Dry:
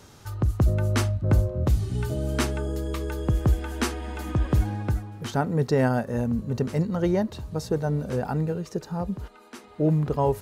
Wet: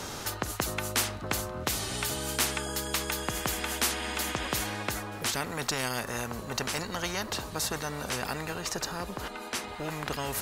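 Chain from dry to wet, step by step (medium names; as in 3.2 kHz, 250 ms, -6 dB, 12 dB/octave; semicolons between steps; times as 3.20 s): spectrum-flattening compressor 4:1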